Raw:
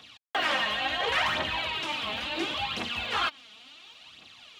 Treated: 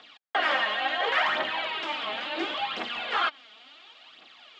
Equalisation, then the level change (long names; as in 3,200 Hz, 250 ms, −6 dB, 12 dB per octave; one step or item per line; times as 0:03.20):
loudspeaker in its box 390–6,600 Hz, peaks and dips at 490 Hz −3 dB, 990 Hz −4 dB, 2,600 Hz −5 dB, 4,000 Hz −4 dB, 5,900 Hz −7 dB
high-shelf EQ 4,600 Hz −9.5 dB
+5.0 dB